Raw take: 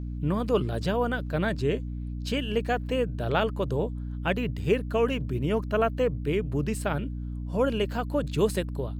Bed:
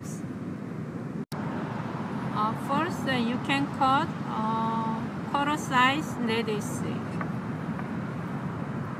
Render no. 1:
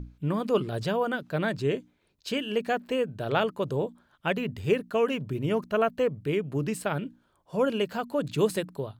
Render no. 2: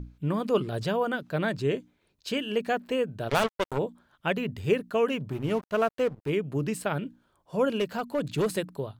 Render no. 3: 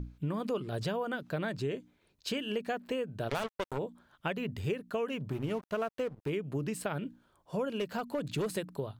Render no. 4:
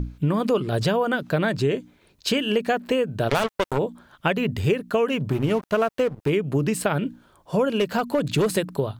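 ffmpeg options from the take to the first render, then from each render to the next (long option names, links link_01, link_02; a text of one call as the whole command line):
ffmpeg -i in.wav -af "bandreject=frequency=60:width_type=h:width=6,bandreject=frequency=120:width_type=h:width=6,bandreject=frequency=180:width_type=h:width=6,bandreject=frequency=240:width_type=h:width=6,bandreject=frequency=300:width_type=h:width=6" out.wav
ffmpeg -i in.wav -filter_complex "[0:a]asplit=3[link_01][link_02][link_03];[link_01]afade=type=out:start_time=3.28:duration=0.02[link_04];[link_02]acrusher=bits=3:mix=0:aa=0.5,afade=type=in:start_time=3.28:duration=0.02,afade=type=out:start_time=3.77:duration=0.02[link_05];[link_03]afade=type=in:start_time=3.77:duration=0.02[link_06];[link_04][link_05][link_06]amix=inputs=3:normalize=0,asplit=3[link_07][link_08][link_09];[link_07]afade=type=out:start_time=5.29:duration=0.02[link_10];[link_08]aeval=exprs='sgn(val(0))*max(abs(val(0))-0.00794,0)':channel_layout=same,afade=type=in:start_time=5.29:duration=0.02,afade=type=out:start_time=6.29:duration=0.02[link_11];[link_09]afade=type=in:start_time=6.29:duration=0.02[link_12];[link_10][link_11][link_12]amix=inputs=3:normalize=0,asettb=1/sr,asplit=3[link_13][link_14][link_15];[link_13]atrim=end=7.764[link_16];[link_14]atrim=start=7.76:end=8.54,asetpts=PTS-STARTPTS,afade=type=in:duration=0.004:curve=qsin,afade=type=out:start_time=0.776:duration=0.004:curve=qsin,asoftclip=type=hard:threshold=-21.5dB[link_17];[link_15]atrim=start=8.536[link_18];[link_16][link_17]acrossfade=duration=0.004:curve1=hsin:curve2=qsin[link_19];[link_19][link_18]acrossfade=duration=0.004:curve1=qsin:curve2=hsin" out.wav
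ffmpeg -i in.wav -af "acompressor=threshold=-31dB:ratio=5" out.wav
ffmpeg -i in.wav -af "volume=12dB" out.wav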